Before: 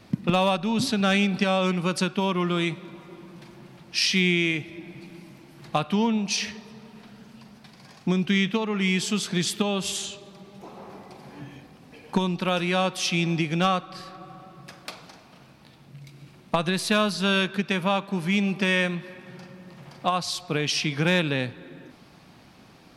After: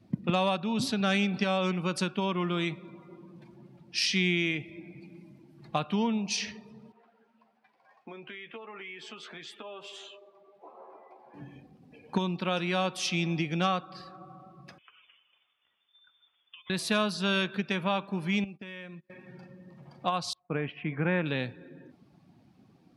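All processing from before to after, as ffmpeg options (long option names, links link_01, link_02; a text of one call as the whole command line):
ffmpeg -i in.wav -filter_complex "[0:a]asettb=1/sr,asplit=3[link_01][link_02][link_03];[link_01]atrim=end=6.924[link_04];[link_02]atrim=start=6.92:end=11.34,asetpts=PTS-STARTPTS,afade=type=in:duration=0.004:curve=qsin,afade=type=out:start_time=4.416:duration=0.004:curve=qsin,acrossover=split=380 2900:gain=0.0794 1 0.158[link_05][link_06][link_07];[link_05][link_06][link_07]amix=inputs=3:normalize=0,acompressor=threshold=-35dB:ratio=6:attack=3.2:release=140:knee=1:detection=peak,asplit=2[link_08][link_09];[link_09]adelay=13,volume=-7dB[link_10];[link_08][link_10]amix=inputs=2:normalize=0,atrim=end_sample=194922[link_11];[link_03]atrim=start=11.336[link_12];[link_04][link_11]acrossfade=duration=0.004:curve1=hsin:curve2=qsin[link_13];[link_13][link_12]acrossfade=duration=0.004:curve1=qsin:curve2=hsin,asettb=1/sr,asplit=3[link_14][link_15][link_16];[link_14]atrim=end=14.784[link_17];[link_15]atrim=start=14.78:end=16.7,asetpts=PTS-STARTPTS,afade=type=in:duration=0.004:curve=qsin,afade=type=out:start_time=1.916:duration=0.004:curve=qsin,highpass=frequency=650:poles=1,acompressor=threshold=-42dB:ratio=6:attack=3.2:release=140:knee=1:detection=peak,lowpass=frequency=3100:width_type=q:width=0.5098,lowpass=frequency=3100:width_type=q:width=0.6013,lowpass=frequency=3100:width_type=q:width=0.9,lowpass=frequency=3100:width_type=q:width=2.563,afreqshift=-3700[link_18];[link_16]atrim=start=16.696[link_19];[link_17][link_18]acrossfade=duration=0.004:curve1=hsin:curve2=qsin[link_20];[link_20][link_19]acrossfade=duration=0.004:curve1=qsin:curve2=hsin,asettb=1/sr,asplit=3[link_21][link_22][link_23];[link_21]atrim=end=18.444[link_24];[link_22]atrim=start=18.44:end=19.1,asetpts=PTS-STARTPTS,afade=type=in:duration=0.004:curve=qsin,afade=type=out:start_time=0.656:duration=0.004:curve=qsin,agate=range=-24dB:threshold=-33dB:ratio=16:release=100:detection=peak,acompressor=threshold=-41dB:ratio=2.5:attack=3.2:release=140:knee=1:detection=peak[link_25];[link_23]atrim=start=19.096[link_26];[link_24][link_25]acrossfade=duration=0.004:curve1=hsin:curve2=qsin[link_27];[link_27][link_26]acrossfade=duration=0.004:curve1=qsin:curve2=hsin,asettb=1/sr,asplit=3[link_28][link_29][link_30];[link_28]atrim=end=20.334[link_31];[link_29]atrim=start=20.33:end=21.26,asetpts=PTS-STARTPTS,afade=type=in:duration=0.004:curve=qsin,afade=type=out:start_time=0.926:duration=0.004:curve=qsin,lowpass=frequency=2200:width=0.5412,lowpass=frequency=2200:width=1.3066,agate=range=-33dB:threshold=-35dB:ratio=3:release=100:detection=peak[link_32];[link_30]atrim=start=21.256[link_33];[link_31][link_32]acrossfade=duration=0.004:curve1=hsin:curve2=qsin[link_34];[link_34][link_33]acrossfade=duration=0.004:curve1=qsin:curve2=hsin,highpass=46,afftdn=noise_reduction=14:noise_floor=-47,volume=-5dB" out.wav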